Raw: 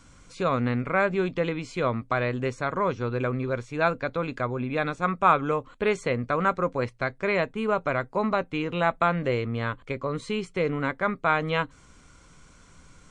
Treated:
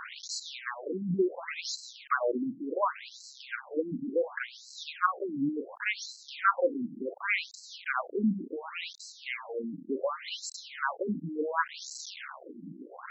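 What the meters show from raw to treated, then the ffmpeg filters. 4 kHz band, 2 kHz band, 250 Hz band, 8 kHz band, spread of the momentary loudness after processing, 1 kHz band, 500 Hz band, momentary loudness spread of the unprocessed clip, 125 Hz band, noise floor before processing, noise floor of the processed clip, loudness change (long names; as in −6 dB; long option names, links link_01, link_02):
+0.5 dB, −5.0 dB, −4.5 dB, can't be measured, 12 LU, −7.5 dB, −7.5 dB, 6 LU, −14.0 dB, −54 dBFS, −52 dBFS, −6.5 dB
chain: -af "aeval=exprs='val(0)+0.5*0.0422*sgn(val(0))':channel_layout=same,afftfilt=real='re*between(b*sr/1024,230*pow(5700/230,0.5+0.5*sin(2*PI*0.69*pts/sr))/1.41,230*pow(5700/230,0.5+0.5*sin(2*PI*0.69*pts/sr))*1.41)':imag='im*between(b*sr/1024,230*pow(5700/230,0.5+0.5*sin(2*PI*0.69*pts/sr))/1.41,230*pow(5700/230,0.5+0.5*sin(2*PI*0.69*pts/sr))*1.41)':win_size=1024:overlap=0.75"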